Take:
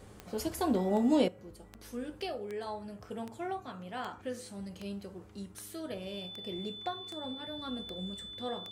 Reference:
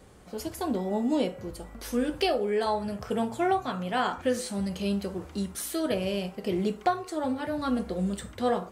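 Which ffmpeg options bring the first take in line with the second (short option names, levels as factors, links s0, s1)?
-af "adeclick=t=4,bandreject=f=104.1:t=h:w=4,bandreject=f=208.2:t=h:w=4,bandreject=f=312.3:t=h:w=4,bandreject=f=416.4:t=h:w=4,bandreject=f=3500:w=30,asetnsamples=n=441:p=0,asendcmd='1.28 volume volume 12dB',volume=1"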